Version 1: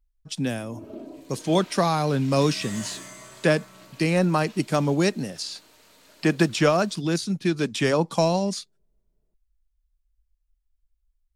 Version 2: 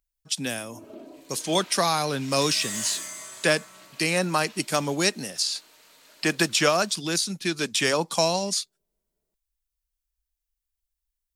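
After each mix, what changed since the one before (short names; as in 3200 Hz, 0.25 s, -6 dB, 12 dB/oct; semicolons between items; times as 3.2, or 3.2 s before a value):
first sound: add high shelf 4000 Hz -9.5 dB; second sound: add HPF 120 Hz 24 dB/oct; master: add tilt +3 dB/oct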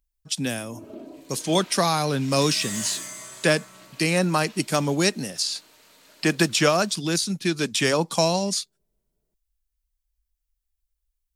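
second sound: remove HPF 120 Hz 24 dB/oct; master: add low shelf 320 Hz +7.5 dB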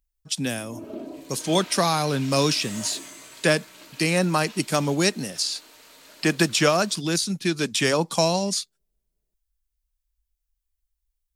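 first sound +4.5 dB; second sound -7.5 dB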